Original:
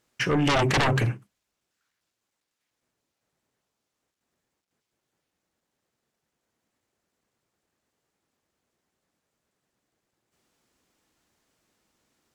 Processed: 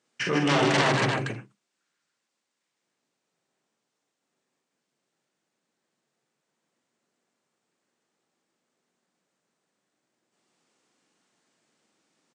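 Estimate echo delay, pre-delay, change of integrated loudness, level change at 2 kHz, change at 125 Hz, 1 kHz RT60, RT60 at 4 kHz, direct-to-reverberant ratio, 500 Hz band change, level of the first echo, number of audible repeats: 42 ms, none, 0.0 dB, +1.0 dB, -4.0 dB, none, none, none, +1.0 dB, -4.0 dB, 4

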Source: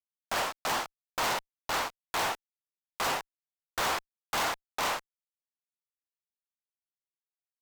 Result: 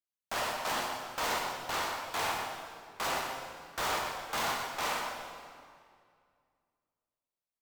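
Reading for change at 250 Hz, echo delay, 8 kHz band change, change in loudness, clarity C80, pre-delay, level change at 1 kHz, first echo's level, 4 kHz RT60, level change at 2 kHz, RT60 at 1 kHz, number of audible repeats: -1.0 dB, 0.123 s, -2.0 dB, -2.0 dB, 2.5 dB, 10 ms, -1.5 dB, -7.0 dB, 1.7 s, -1.5 dB, 2.1 s, 1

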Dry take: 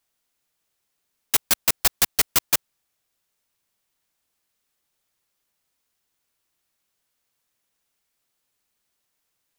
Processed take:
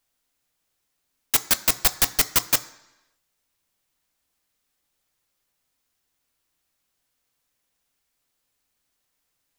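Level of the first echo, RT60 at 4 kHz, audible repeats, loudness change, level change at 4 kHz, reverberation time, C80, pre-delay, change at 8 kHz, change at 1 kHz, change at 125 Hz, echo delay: none, 0.95 s, none, 0.0 dB, +0.5 dB, 1.0 s, 19.5 dB, 3 ms, 0.0 dB, +0.5 dB, +2.5 dB, none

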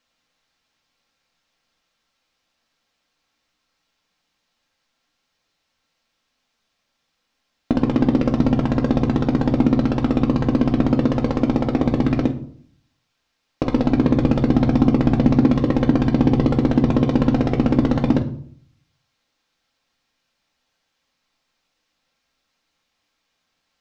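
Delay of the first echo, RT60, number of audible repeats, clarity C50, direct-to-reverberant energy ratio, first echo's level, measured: none, 0.60 s, none, 13.0 dB, 2.5 dB, none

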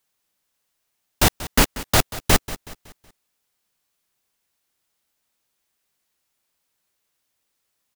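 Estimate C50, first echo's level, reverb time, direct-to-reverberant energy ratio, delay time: none, -16.0 dB, none, none, 0.186 s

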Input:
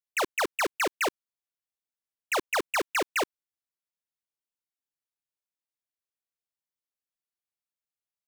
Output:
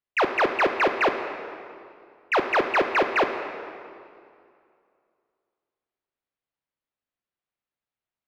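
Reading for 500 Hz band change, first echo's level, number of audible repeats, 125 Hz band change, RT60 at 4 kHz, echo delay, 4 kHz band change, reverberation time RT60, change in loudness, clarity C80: +8.0 dB, none, none, +8.5 dB, 1.8 s, none, +0.5 dB, 2.4 s, +5.5 dB, 8.0 dB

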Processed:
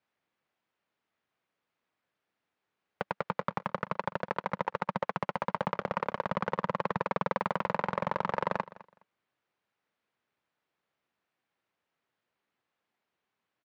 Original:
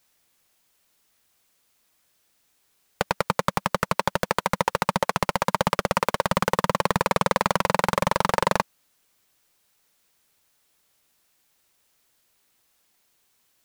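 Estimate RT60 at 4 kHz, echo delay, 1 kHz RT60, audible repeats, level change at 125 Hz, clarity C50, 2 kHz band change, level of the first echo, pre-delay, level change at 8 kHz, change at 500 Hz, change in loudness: none, 0.208 s, none, 2, -10.0 dB, none, -10.0 dB, -19.0 dB, none, under -25 dB, -8.5 dB, -9.0 dB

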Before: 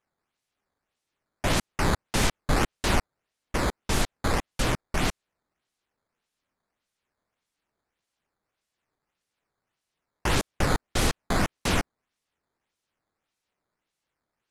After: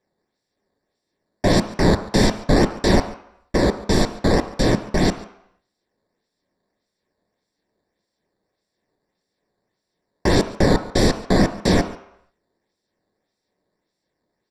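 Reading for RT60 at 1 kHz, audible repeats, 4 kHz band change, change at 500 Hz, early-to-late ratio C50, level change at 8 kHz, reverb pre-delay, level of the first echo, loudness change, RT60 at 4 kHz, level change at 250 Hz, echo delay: 0.75 s, 1, +5.0 dB, +12.0 dB, 12.5 dB, +1.0 dB, 3 ms, -21.0 dB, +8.0 dB, 0.70 s, +12.0 dB, 0.141 s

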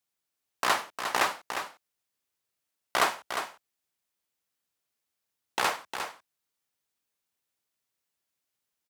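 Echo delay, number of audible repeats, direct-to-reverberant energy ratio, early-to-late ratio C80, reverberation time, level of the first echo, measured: 0.355 s, 1, none, none, none, -8.0 dB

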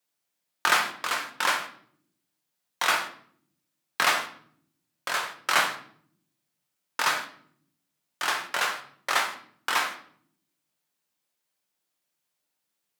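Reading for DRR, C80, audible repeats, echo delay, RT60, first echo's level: 3.5 dB, 14.5 dB, none, none, 0.60 s, none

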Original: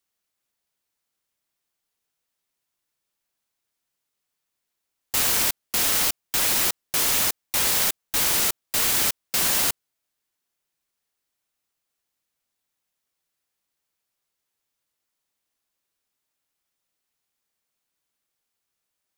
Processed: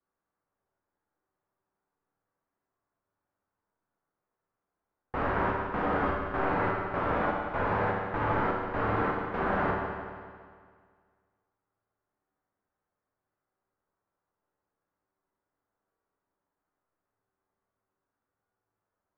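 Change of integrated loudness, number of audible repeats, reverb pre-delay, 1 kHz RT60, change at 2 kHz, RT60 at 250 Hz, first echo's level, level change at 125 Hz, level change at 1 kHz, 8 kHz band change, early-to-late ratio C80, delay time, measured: -9.5 dB, none, 10 ms, 1.9 s, -3.5 dB, 1.9 s, none, +6.5 dB, +5.5 dB, under -40 dB, 2.5 dB, none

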